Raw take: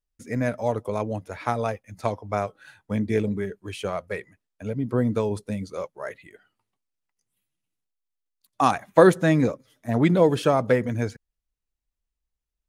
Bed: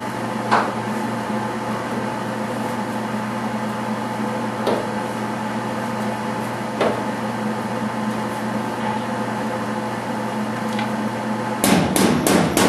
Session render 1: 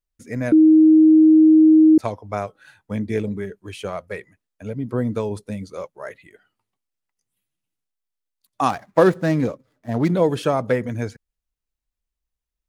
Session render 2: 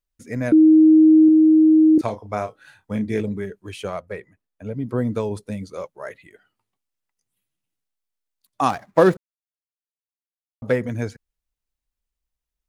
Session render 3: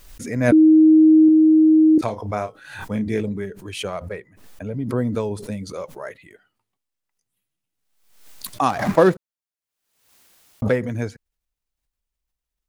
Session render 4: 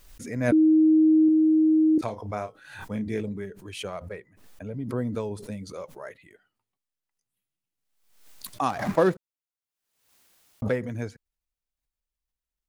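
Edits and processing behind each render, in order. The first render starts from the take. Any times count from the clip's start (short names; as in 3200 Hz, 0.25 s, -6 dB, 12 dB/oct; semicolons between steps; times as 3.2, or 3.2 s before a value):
0.52–1.98 bleep 314 Hz -8 dBFS; 8.69–10.13 median filter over 15 samples
1.25–3.21 doubler 33 ms -9.5 dB; 4–4.74 high shelf 2200 Hz -8.5 dB; 9.17–10.62 mute
backwards sustainer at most 70 dB/s
gain -6.5 dB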